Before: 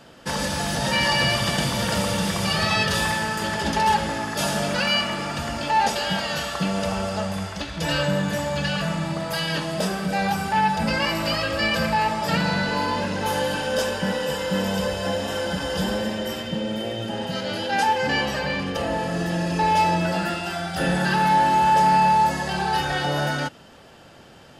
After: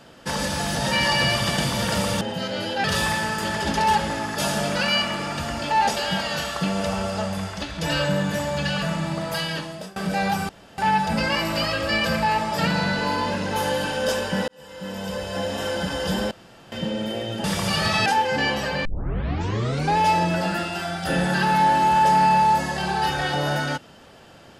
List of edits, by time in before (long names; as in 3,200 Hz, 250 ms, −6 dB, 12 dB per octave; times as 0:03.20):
0:02.21–0:02.83: swap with 0:17.14–0:17.77
0:09.35–0:09.95: fade out linear, to −24 dB
0:10.48: splice in room tone 0.29 s
0:14.18–0:15.34: fade in
0:16.01–0:16.42: fill with room tone
0:18.56: tape start 1.12 s